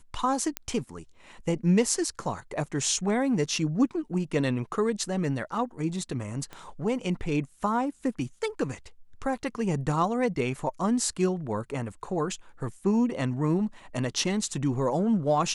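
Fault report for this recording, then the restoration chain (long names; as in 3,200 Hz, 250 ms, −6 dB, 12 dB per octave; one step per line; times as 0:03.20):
0:00.57: click −12 dBFS
0:06.53: click −25 dBFS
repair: click removal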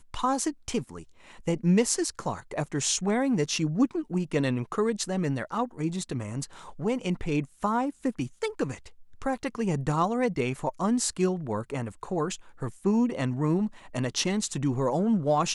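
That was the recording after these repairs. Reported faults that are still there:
0:06.53: click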